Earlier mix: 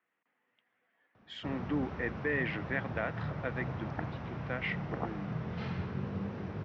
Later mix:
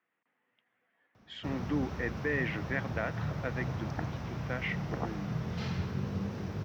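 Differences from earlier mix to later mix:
background: remove low-pass filter 2,700 Hz 12 dB per octave
master: add low-shelf EQ 120 Hz +6 dB

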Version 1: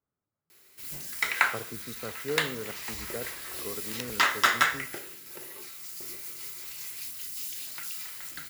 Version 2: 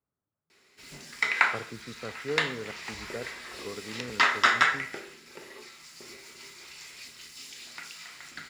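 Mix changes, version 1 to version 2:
background: send on
master: add high-frequency loss of the air 100 metres

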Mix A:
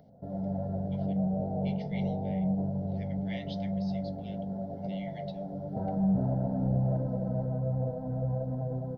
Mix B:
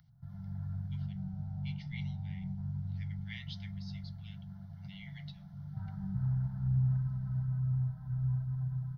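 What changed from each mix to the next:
master: add Chebyshev band-stop filter 140–1,200 Hz, order 3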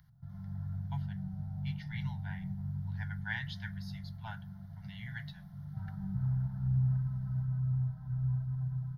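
speech: remove Chebyshev band-pass filter 2,100–6,100 Hz, order 4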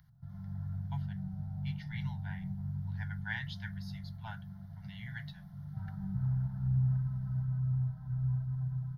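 reverb: off

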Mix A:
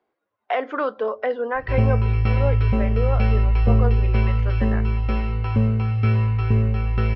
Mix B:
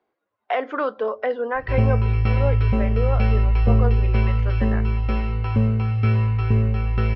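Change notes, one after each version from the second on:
nothing changed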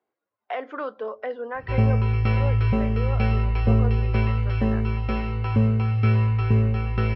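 speech −7.0 dB
master: add high-pass filter 70 Hz

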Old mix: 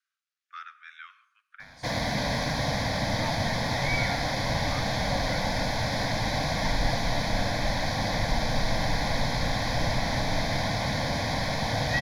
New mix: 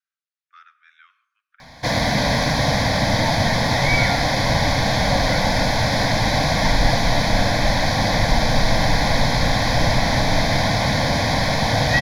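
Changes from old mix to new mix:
speech −6.5 dB
background +9.0 dB

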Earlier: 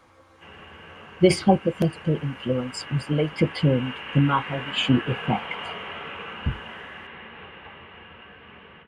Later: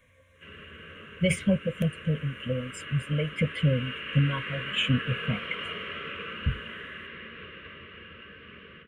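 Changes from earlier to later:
speech: add phaser with its sweep stopped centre 1,300 Hz, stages 6
master: add Butterworth band-reject 820 Hz, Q 1.3

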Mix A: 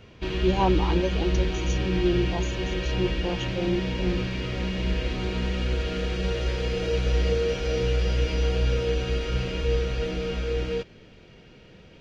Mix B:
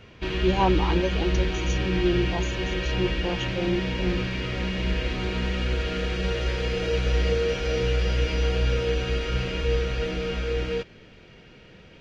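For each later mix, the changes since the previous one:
master: add parametric band 1,800 Hz +4 dB 1.6 octaves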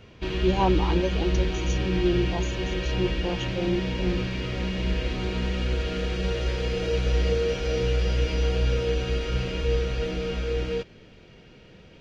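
master: add parametric band 1,800 Hz −4 dB 1.6 octaves

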